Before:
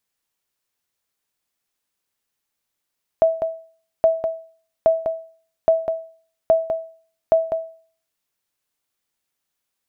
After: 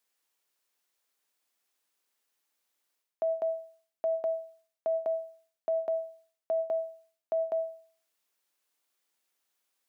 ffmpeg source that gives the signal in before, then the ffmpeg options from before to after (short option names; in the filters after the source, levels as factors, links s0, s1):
-f lavfi -i "aevalsrc='0.422*(sin(2*PI*652*mod(t,0.82))*exp(-6.91*mod(t,0.82)/0.45)+0.447*sin(2*PI*652*max(mod(t,0.82)-0.2,0))*exp(-6.91*max(mod(t,0.82)-0.2,0)/0.45))':d=4.92:s=44100"
-af "highpass=290,areverse,acompressor=threshold=0.0398:ratio=10,areverse"